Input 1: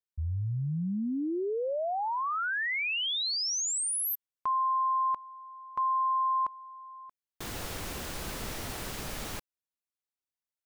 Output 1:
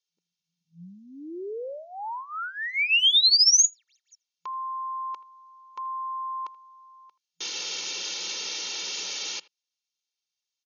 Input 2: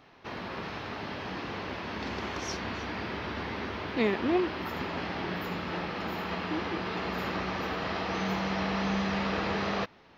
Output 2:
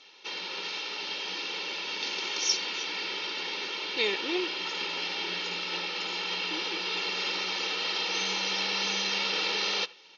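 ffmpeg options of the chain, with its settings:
ffmpeg -i in.wav -filter_complex "[0:a]aexciter=amount=4.5:drive=8.4:freq=2600,equalizer=frequency=2000:width=0.83:gain=4.5,aecho=1:1:2.2:0.73,afftfilt=real='re*between(b*sr/4096,170,6800)':imag='im*between(b*sr/4096,170,6800)':win_size=4096:overlap=0.75,asplit=2[link_01][link_02];[link_02]adelay=80,highpass=300,lowpass=3400,asoftclip=type=hard:threshold=-12.5dB,volume=-20dB[link_03];[link_01][link_03]amix=inputs=2:normalize=0,volume=-7.5dB" out.wav

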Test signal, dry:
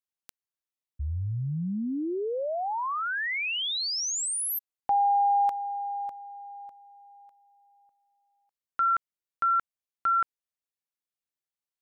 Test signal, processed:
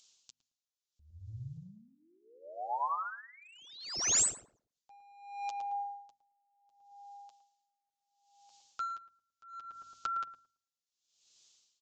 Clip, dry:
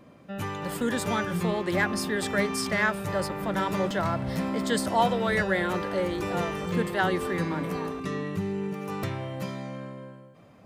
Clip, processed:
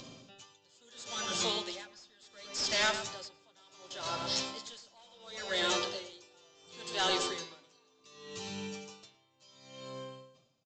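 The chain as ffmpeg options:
ffmpeg -i in.wav -filter_complex "[0:a]highshelf=frequency=3800:gain=-4,bandreject=frequency=50:width_type=h:width=6,bandreject=frequency=100:width_type=h:width=6,bandreject=frequency=150:width_type=h:width=6,bandreject=frequency=200:width_type=h:width=6,bandreject=frequency=250:width_type=h:width=6,flanger=delay=7.6:depth=1.3:regen=-14:speed=0.29:shape=sinusoidal,acrossover=split=410[link_01][link_02];[link_01]acompressor=threshold=-44dB:ratio=6:attack=8.7:release=297[link_03];[link_02]aexciter=amount=12.5:drive=3.3:freq=2900[link_04];[link_03][link_04]amix=inputs=2:normalize=0,acompressor=mode=upward:threshold=-41dB:ratio=2.5:attack=3.1:release=97:knee=2.83:detection=peak,aresample=16000,asoftclip=type=hard:threshold=-23.5dB,aresample=44100,asplit=2[link_05][link_06];[link_06]adelay=111,lowpass=frequency=1200:poles=1,volume=-5dB,asplit=2[link_07][link_08];[link_08]adelay=111,lowpass=frequency=1200:poles=1,volume=0.49,asplit=2[link_09][link_10];[link_10]adelay=111,lowpass=frequency=1200:poles=1,volume=0.49,asplit=2[link_11][link_12];[link_12]adelay=111,lowpass=frequency=1200:poles=1,volume=0.49,asplit=2[link_13][link_14];[link_14]adelay=111,lowpass=frequency=1200:poles=1,volume=0.49,asplit=2[link_15][link_16];[link_16]adelay=111,lowpass=frequency=1200:poles=1,volume=0.49[link_17];[link_05][link_07][link_09][link_11][link_13][link_15][link_17]amix=inputs=7:normalize=0,aeval=exprs='val(0)*pow(10,-32*(0.5-0.5*cos(2*PI*0.7*n/s))/20)':channel_layout=same" out.wav

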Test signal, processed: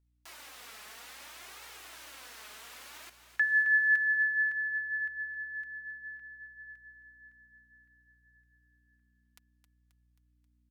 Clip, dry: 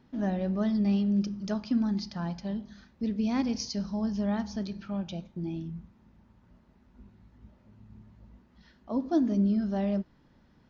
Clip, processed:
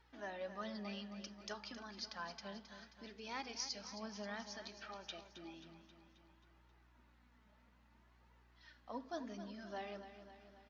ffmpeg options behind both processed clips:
ffmpeg -i in.wav -filter_complex "[0:a]aemphasis=mode=production:type=bsi,asplit=2[link_01][link_02];[link_02]acompressor=threshold=-39dB:ratio=6,volume=-0.5dB[link_03];[link_01][link_03]amix=inputs=2:normalize=0,bandpass=frequency=1700:width_type=q:width=0.68:csg=0,aeval=exprs='val(0)+0.000562*(sin(2*PI*60*n/s)+sin(2*PI*2*60*n/s)/2+sin(2*PI*3*60*n/s)/3+sin(2*PI*4*60*n/s)/4+sin(2*PI*5*60*n/s)/5)':channel_layout=same,flanger=delay=2.1:depth=2.7:regen=26:speed=0.6:shape=triangular,asplit=2[link_04][link_05];[link_05]aecho=0:1:267|534|801|1068|1335|1602:0.282|0.161|0.0916|0.0522|0.0298|0.017[link_06];[link_04][link_06]amix=inputs=2:normalize=0,volume=-3.5dB" out.wav

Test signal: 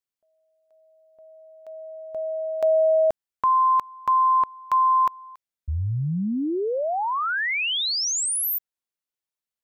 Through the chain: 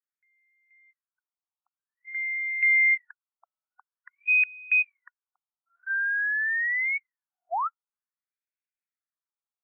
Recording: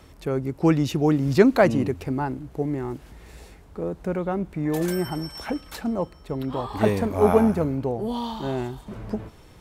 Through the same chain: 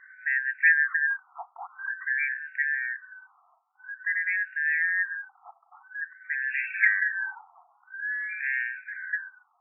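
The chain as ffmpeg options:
ffmpeg -i in.wav -af "afftfilt=real='real(if(lt(b,272),68*(eq(floor(b/68),0)*1+eq(floor(b/68),1)*0+eq(floor(b/68),2)*3+eq(floor(b/68),3)*2)+mod(b,68),b),0)':imag='imag(if(lt(b,272),68*(eq(floor(b/68),0)*1+eq(floor(b/68),1)*0+eq(floor(b/68),2)*3+eq(floor(b/68),3)*2)+mod(b,68),b),0)':win_size=2048:overlap=0.75,afftfilt=real='re*between(b*sr/1024,950*pow(2000/950,0.5+0.5*sin(2*PI*0.49*pts/sr))/1.41,950*pow(2000/950,0.5+0.5*sin(2*PI*0.49*pts/sr))*1.41)':imag='im*between(b*sr/1024,950*pow(2000/950,0.5+0.5*sin(2*PI*0.49*pts/sr))/1.41,950*pow(2000/950,0.5+0.5*sin(2*PI*0.49*pts/sr))*1.41)':win_size=1024:overlap=0.75,volume=-1.5dB" out.wav

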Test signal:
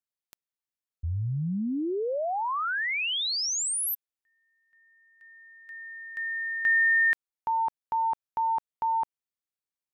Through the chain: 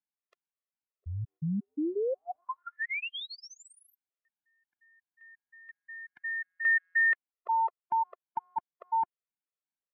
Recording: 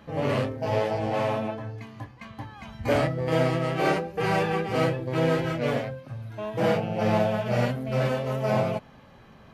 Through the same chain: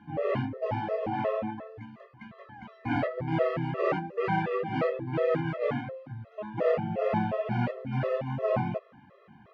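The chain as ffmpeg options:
ffmpeg -i in.wav -af "highpass=120,lowpass=2200,afftfilt=real='re*gt(sin(2*PI*2.8*pts/sr)*(1-2*mod(floor(b*sr/1024/350),2)),0)':imag='im*gt(sin(2*PI*2.8*pts/sr)*(1-2*mod(floor(b*sr/1024/350),2)),0)':win_size=1024:overlap=0.75" out.wav

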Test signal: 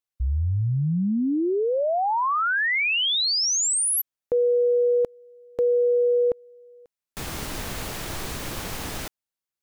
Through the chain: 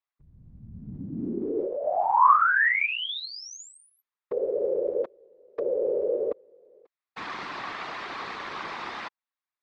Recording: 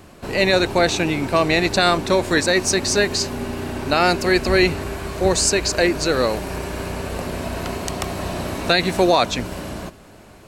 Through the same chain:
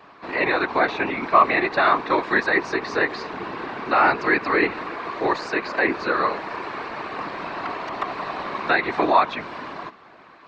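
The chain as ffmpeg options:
ffmpeg -i in.wav -filter_complex "[0:a]highpass=400,equalizer=frequency=540:width_type=q:width=4:gain=-9,equalizer=frequency=1100:width_type=q:width=4:gain=8,equalizer=frequency=1900:width_type=q:width=4:gain=3,equalizer=frequency=3000:width_type=q:width=4:gain=-5,lowpass=frequency=3900:width=0.5412,lowpass=frequency=3900:width=1.3066,acrossover=split=2700[link_01][link_02];[link_02]acompressor=threshold=-40dB:ratio=4:attack=1:release=60[link_03];[link_01][link_03]amix=inputs=2:normalize=0,afftfilt=real='hypot(re,im)*cos(2*PI*random(0))':imag='hypot(re,im)*sin(2*PI*random(1))':win_size=512:overlap=0.75,volume=6dB" out.wav

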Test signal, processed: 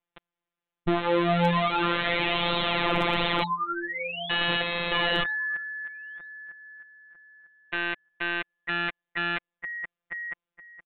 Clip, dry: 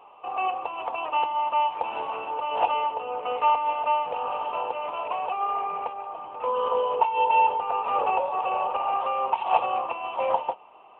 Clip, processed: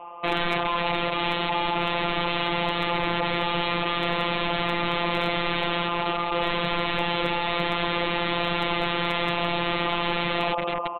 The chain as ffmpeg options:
ffmpeg -i in.wav -filter_complex "[0:a]asplit=2[link_01][link_02];[link_02]adelay=950,lowpass=frequency=2200:poles=1,volume=-9dB,asplit=2[link_03][link_04];[link_04]adelay=950,lowpass=frequency=2200:poles=1,volume=0.25,asplit=2[link_05][link_06];[link_06]adelay=950,lowpass=frequency=2200:poles=1,volume=0.25[link_07];[link_03][link_05][link_07]amix=inputs=3:normalize=0[link_08];[link_01][link_08]amix=inputs=2:normalize=0,apsyclip=20dB,aresample=8000,aeval=exprs='(mod(2.82*val(0)+1,2)-1)/2.82':channel_layout=same,aresample=44100,afftfilt=real='hypot(re,im)*cos(PI*b)':imag='0':win_size=1024:overlap=0.75,highshelf=frequency=2200:gain=-10,asoftclip=type=hard:threshold=-4.5dB,adynamicequalizer=threshold=0.00891:dfrequency=1600:dqfactor=5.7:tfrequency=1600:tqfactor=5.7:attack=5:release=100:ratio=0.375:range=3.5:mode=cutabove:tftype=bell,volume=-4.5dB" out.wav

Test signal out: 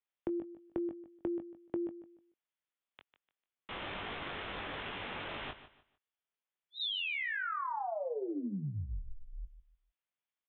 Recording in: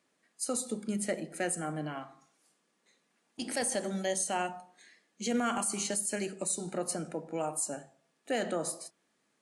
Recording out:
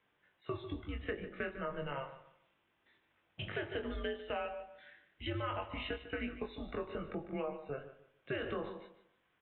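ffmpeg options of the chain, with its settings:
ffmpeg -i in.wav -filter_complex "[0:a]asplit=2[link_01][link_02];[link_02]adelay=21,volume=-5dB[link_03];[link_01][link_03]amix=inputs=2:normalize=0,aresample=8000,aresample=44100,highpass=frequency=590:poles=1,acompressor=threshold=-35dB:ratio=12,afreqshift=-140,asplit=2[link_04][link_05];[link_05]aecho=0:1:149|298|447:0.211|0.0571|0.0154[link_06];[link_04][link_06]amix=inputs=2:normalize=0,volume=1dB" out.wav

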